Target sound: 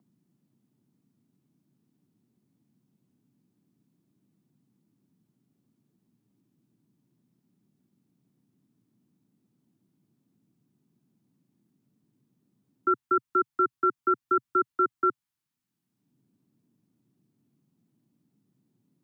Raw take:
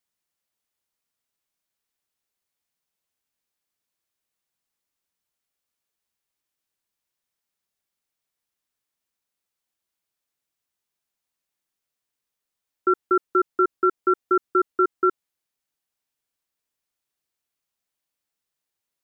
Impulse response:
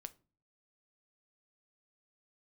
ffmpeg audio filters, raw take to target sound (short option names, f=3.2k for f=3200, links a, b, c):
-filter_complex "[0:a]equalizer=f=125:t=o:w=1:g=12,equalizer=f=250:t=o:w=1:g=4,equalizer=f=500:t=o:w=1:g=-11,equalizer=f=1k:t=o:w=1:g=4,acrossover=split=170|340|620[a][b][c][d];[b]acompressor=mode=upward:threshold=-40dB:ratio=2.5[e];[a][e][c][d]amix=inputs=4:normalize=0,volume=-4dB"